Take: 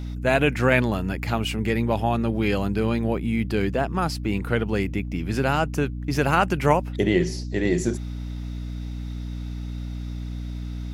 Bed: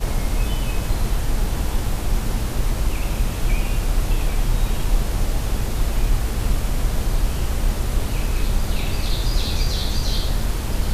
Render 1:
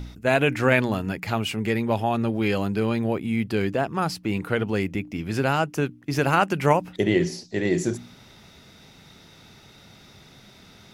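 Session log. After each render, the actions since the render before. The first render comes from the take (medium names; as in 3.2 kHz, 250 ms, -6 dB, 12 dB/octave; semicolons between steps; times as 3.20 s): de-hum 60 Hz, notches 5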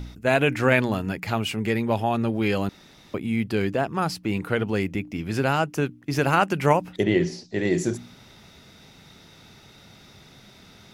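2.69–3.14 s: room tone; 7.03–7.59 s: distance through air 61 m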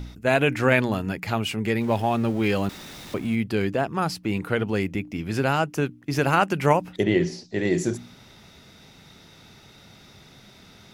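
1.81–3.35 s: jump at every zero crossing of -37.5 dBFS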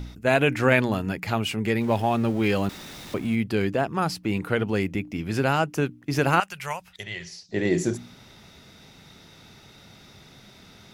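6.40–7.49 s: amplifier tone stack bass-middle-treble 10-0-10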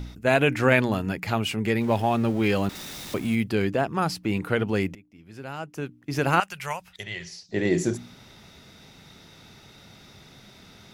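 2.75–3.50 s: treble shelf 4.3 kHz +7.5 dB; 4.95–6.40 s: fade in quadratic, from -23 dB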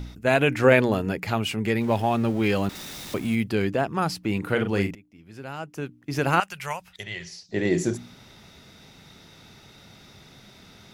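0.64–1.25 s: peaking EQ 460 Hz +7 dB; 4.39–4.91 s: doubling 40 ms -7 dB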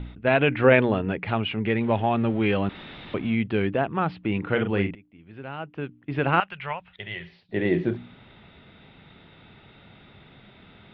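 steep low-pass 3.5 kHz 48 dB/octave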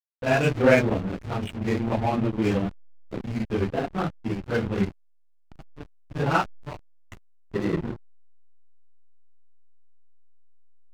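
phase randomisation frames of 100 ms; hysteresis with a dead band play -21 dBFS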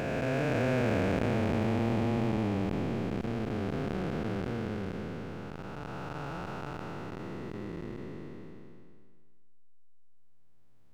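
spectral blur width 1300 ms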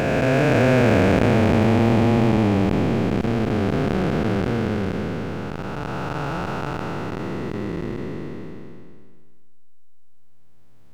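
trim +12 dB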